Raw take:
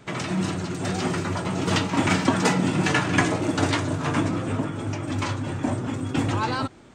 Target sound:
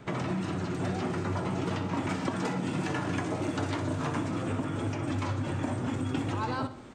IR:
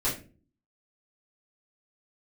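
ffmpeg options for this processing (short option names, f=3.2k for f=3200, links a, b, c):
-filter_complex "[0:a]acompressor=threshold=-27dB:ratio=2,asetnsamples=n=441:p=0,asendcmd='2.09 highshelf g 3;4.43 highshelf g -3',highshelf=f=3.4k:g=-10,acrossover=split=1300|4000[a][b][c];[a]acompressor=threshold=-30dB:ratio=4[d];[b]acompressor=threshold=-46dB:ratio=4[e];[c]acompressor=threshold=-54dB:ratio=4[f];[d][e][f]amix=inputs=3:normalize=0,aecho=1:1:62|124|186|248|310:0.237|0.116|0.0569|0.0279|0.0137,volume=1.5dB"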